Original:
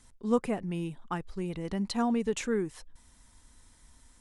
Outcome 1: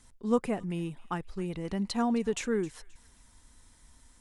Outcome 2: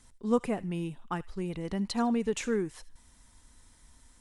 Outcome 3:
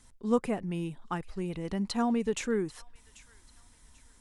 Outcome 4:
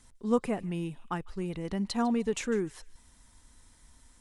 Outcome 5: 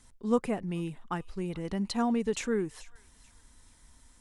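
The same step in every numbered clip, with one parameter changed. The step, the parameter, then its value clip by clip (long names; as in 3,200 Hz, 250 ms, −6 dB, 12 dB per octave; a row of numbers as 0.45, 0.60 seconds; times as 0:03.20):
delay with a high-pass on its return, delay time: 264, 76, 789, 151, 436 milliseconds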